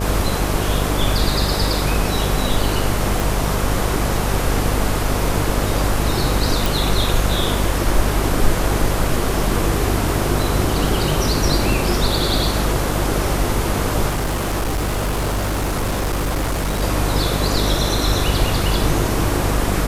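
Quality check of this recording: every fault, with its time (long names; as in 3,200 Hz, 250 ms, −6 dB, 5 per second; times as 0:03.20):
mains buzz 50 Hz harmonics 15 −22 dBFS
0:03.20: click
0:06.66: click
0:14.08–0:16.83: clipping −17 dBFS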